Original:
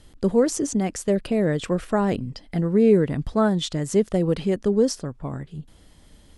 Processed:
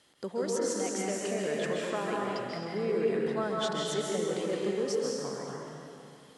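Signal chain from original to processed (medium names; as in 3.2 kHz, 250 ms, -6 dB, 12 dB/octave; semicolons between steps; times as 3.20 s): frequency weighting A; compression 1.5:1, threshold -33 dBFS, peak gain reduction 5.5 dB; plate-style reverb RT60 2.6 s, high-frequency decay 0.75×, pre-delay 120 ms, DRR -4 dB; trim -5.5 dB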